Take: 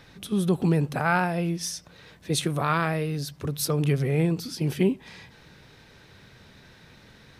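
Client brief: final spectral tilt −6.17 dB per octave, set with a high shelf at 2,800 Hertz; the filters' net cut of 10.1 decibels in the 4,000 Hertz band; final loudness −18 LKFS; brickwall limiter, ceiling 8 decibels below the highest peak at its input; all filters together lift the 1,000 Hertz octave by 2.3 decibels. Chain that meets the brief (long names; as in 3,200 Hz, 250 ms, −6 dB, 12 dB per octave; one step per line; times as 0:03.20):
parametric band 1,000 Hz +4.5 dB
high-shelf EQ 2,800 Hz −7 dB
parametric band 4,000 Hz −7 dB
level +10 dB
brickwall limiter −6.5 dBFS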